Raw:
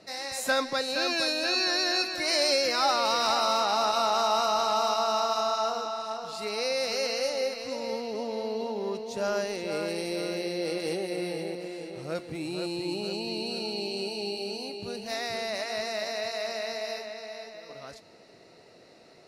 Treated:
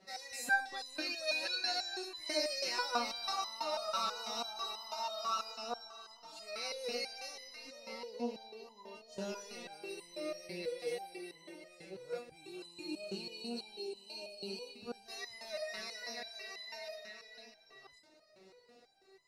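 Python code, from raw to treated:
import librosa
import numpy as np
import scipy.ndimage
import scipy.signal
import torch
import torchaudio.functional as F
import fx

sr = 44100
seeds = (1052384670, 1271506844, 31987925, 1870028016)

y = fx.resonator_held(x, sr, hz=6.1, low_hz=190.0, high_hz=1000.0)
y = F.gain(torch.from_numpy(y), 5.0).numpy()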